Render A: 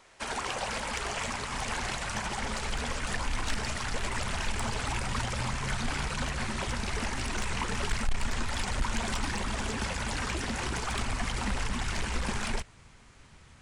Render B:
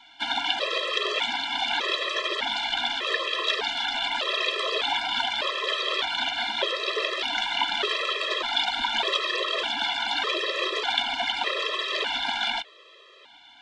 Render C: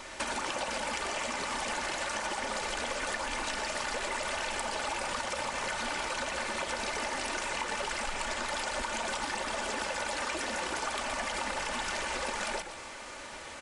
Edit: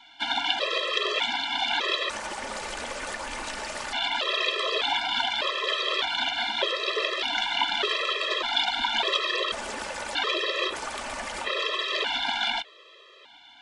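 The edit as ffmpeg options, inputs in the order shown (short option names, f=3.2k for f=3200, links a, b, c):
-filter_complex "[2:a]asplit=3[a][b][c];[1:a]asplit=4[d][e][f][g];[d]atrim=end=2.102[h];[a]atrim=start=2.098:end=3.932[i];[e]atrim=start=3.928:end=9.522[j];[b]atrim=start=9.518:end=10.152[k];[f]atrim=start=10.148:end=10.77[l];[c]atrim=start=10.67:end=11.51[m];[g]atrim=start=11.41[n];[h][i]acrossfade=d=0.004:c1=hsin:c2=hsin[o];[o][j]acrossfade=d=0.004:c1=hsin:c2=hsin[p];[p][k]acrossfade=d=0.004:c1=hsin:c2=hsin[q];[q][l]acrossfade=d=0.004:c1=hsin:c2=hsin[r];[r][m]acrossfade=d=0.1:c1=tri:c2=tri[s];[s][n]acrossfade=d=0.1:c1=tri:c2=tri"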